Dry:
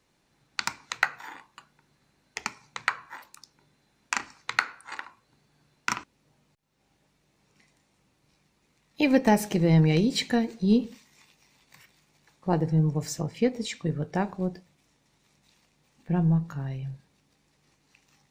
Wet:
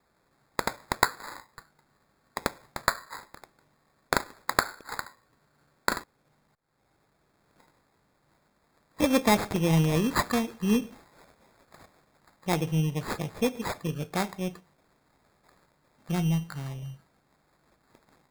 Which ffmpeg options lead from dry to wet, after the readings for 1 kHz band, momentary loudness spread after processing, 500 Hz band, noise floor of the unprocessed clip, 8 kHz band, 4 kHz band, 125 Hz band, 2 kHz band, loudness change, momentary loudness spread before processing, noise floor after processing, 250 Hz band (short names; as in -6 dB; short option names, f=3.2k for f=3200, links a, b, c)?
+2.5 dB, 15 LU, -1.0 dB, -70 dBFS, +1.5 dB, 0.0 dB, -3.0 dB, -1.0 dB, -2.0 dB, 18 LU, -70 dBFS, -3.0 dB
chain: -af "tiltshelf=f=970:g=-3.5,acrusher=samples=15:mix=1:aa=0.000001"